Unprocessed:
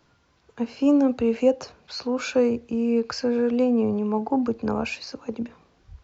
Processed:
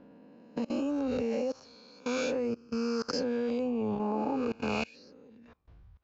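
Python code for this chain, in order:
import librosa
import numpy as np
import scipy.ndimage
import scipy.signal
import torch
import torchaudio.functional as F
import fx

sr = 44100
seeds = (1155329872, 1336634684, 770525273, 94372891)

y = fx.spec_swells(x, sr, rise_s=1.56)
y = fx.env_lowpass(y, sr, base_hz=2600.0, full_db=-18.5)
y = fx.level_steps(y, sr, step_db=24)
y = F.gain(torch.from_numpy(y), -6.5).numpy()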